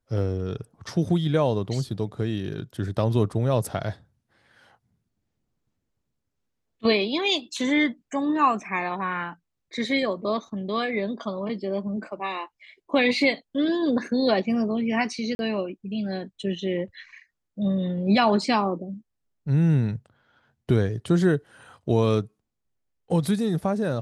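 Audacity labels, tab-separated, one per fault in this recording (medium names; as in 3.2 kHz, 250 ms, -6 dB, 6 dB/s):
15.350000	15.390000	dropout 41 ms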